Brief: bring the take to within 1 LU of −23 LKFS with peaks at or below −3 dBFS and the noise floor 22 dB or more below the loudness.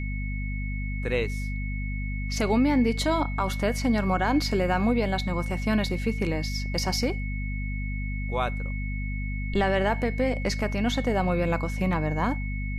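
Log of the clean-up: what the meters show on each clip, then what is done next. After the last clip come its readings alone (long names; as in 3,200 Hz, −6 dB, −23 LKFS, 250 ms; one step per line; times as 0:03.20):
mains hum 50 Hz; hum harmonics up to 250 Hz; level of the hum −28 dBFS; interfering tone 2,200 Hz; level of the tone −38 dBFS; integrated loudness −27.0 LKFS; sample peak −12.5 dBFS; target loudness −23.0 LKFS
→ hum removal 50 Hz, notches 5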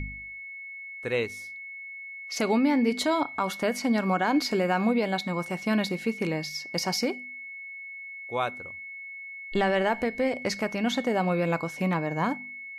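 mains hum none found; interfering tone 2,200 Hz; level of the tone −38 dBFS
→ notch filter 2,200 Hz, Q 30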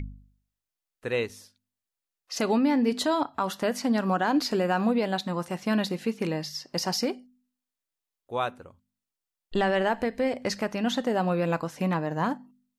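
interfering tone none found; integrated loudness −27.5 LKFS; sample peak −13.0 dBFS; target loudness −23.0 LKFS
→ level +4.5 dB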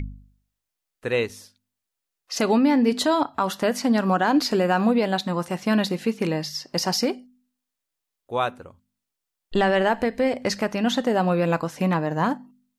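integrated loudness −23.0 LKFS; sample peak −8.5 dBFS; background noise floor −84 dBFS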